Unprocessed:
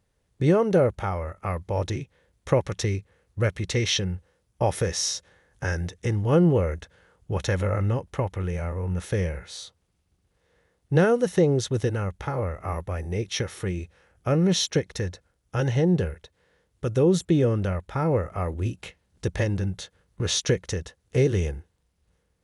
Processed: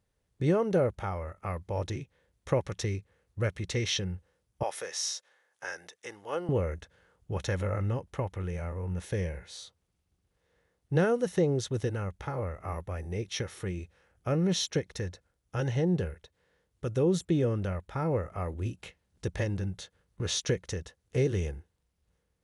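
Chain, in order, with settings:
0:04.63–0:06.49: high-pass filter 630 Hz 12 dB per octave
0:08.97–0:09.53: notch filter 1,300 Hz, Q 7.5
level −6 dB

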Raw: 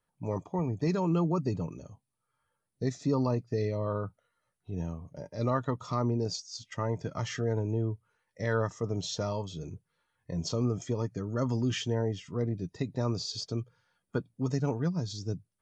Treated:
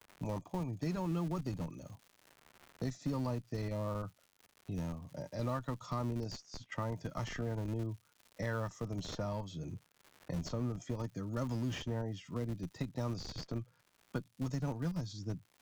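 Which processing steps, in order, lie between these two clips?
high-pass filter 66 Hz 6 dB per octave
parametric band 420 Hz −11 dB 0.24 octaves
in parallel at −7 dB: comparator with hysteresis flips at −30 dBFS
on the sum: noise gate −57 dBFS, range −18 dB
surface crackle 190 per second −51 dBFS
multiband upward and downward compressor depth 70%
level −7 dB

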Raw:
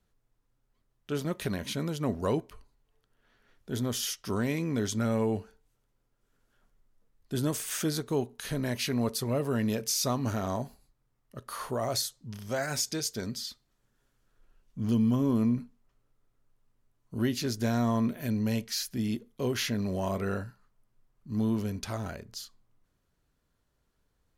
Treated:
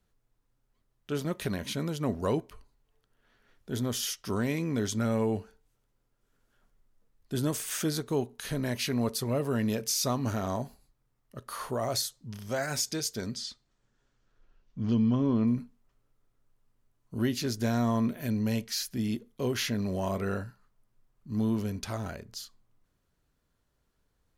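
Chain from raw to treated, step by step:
0:13.34–0:15.46: low-pass filter 9,300 Hz → 4,500 Hz 24 dB per octave

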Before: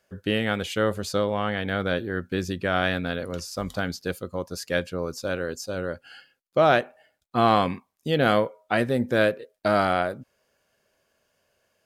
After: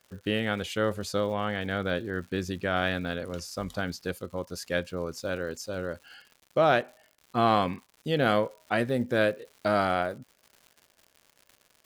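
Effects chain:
surface crackle 160 per second −39 dBFS
level −3.5 dB

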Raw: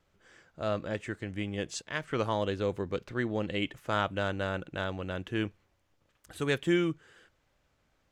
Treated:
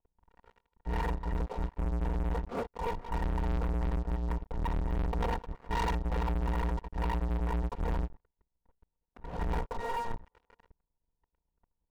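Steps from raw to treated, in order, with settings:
samples in bit-reversed order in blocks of 256 samples
low-pass filter 1,400 Hz 24 dB per octave
low-shelf EQ 340 Hz +5 dB
change of speed 0.682×
leveller curve on the samples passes 5

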